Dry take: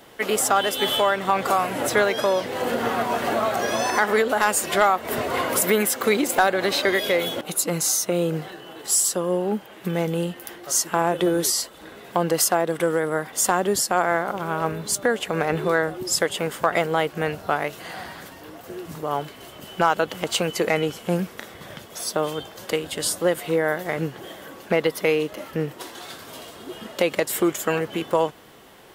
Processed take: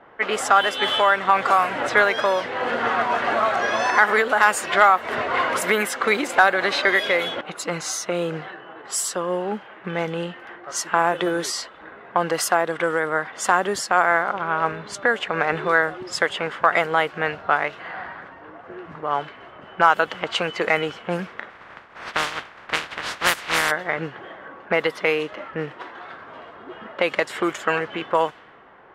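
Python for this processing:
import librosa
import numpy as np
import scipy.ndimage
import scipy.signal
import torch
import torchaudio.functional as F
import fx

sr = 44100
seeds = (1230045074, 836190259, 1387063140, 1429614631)

y = fx.spec_flatten(x, sr, power=0.24, at=(21.49, 23.7), fade=0.02)
y = fx.env_lowpass(y, sr, base_hz=1300.0, full_db=-15.5)
y = fx.peak_eq(y, sr, hz=1500.0, db=12.5, octaves=2.5)
y = F.gain(torch.from_numpy(y), -6.0).numpy()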